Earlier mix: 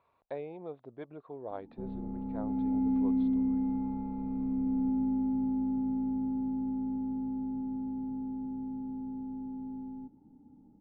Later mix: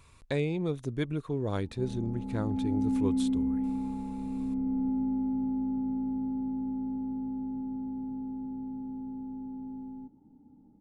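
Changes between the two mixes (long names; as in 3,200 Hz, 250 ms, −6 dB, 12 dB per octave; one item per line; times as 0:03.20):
speech: remove resonant band-pass 710 Hz, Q 2.5
master: remove Butterworth low-pass 4,600 Hz 48 dB per octave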